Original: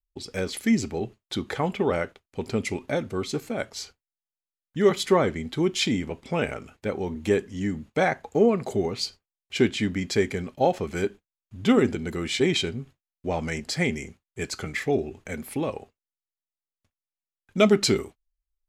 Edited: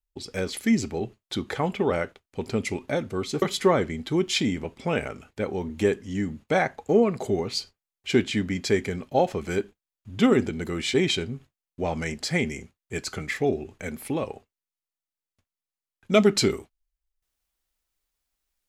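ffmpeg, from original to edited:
ffmpeg -i in.wav -filter_complex "[0:a]asplit=2[link_01][link_02];[link_01]atrim=end=3.422[link_03];[link_02]atrim=start=4.878[link_04];[link_03][link_04]acrossfade=duration=0.004:curve1=hsin:curve2=hsin" out.wav

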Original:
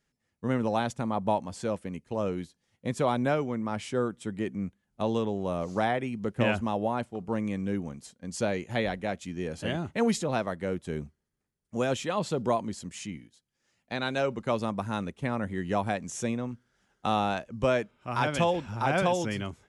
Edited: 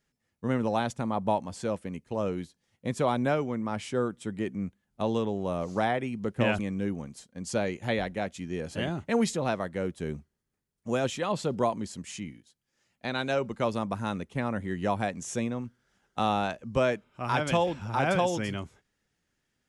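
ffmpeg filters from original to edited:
ffmpeg -i in.wav -filter_complex "[0:a]asplit=2[link_01][link_02];[link_01]atrim=end=6.592[link_03];[link_02]atrim=start=7.458[link_04];[link_03][link_04]acrossfade=duration=0.004:curve1=hsin:curve2=hsin" out.wav

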